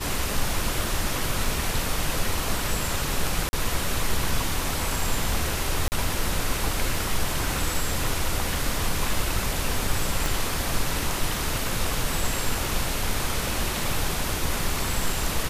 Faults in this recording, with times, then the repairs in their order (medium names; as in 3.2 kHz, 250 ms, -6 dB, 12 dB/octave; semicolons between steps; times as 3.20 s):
3.49–3.53 s: dropout 41 ms
5.88–5.92 s: dropout 39 ms
10.26 s: pop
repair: de-click; interpolate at 3.49 s, 41 ms; interpolate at 5.88 s, 39 ms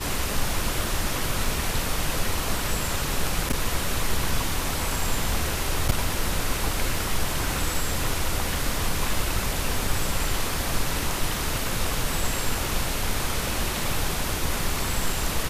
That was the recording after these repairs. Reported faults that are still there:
10.26 s: pop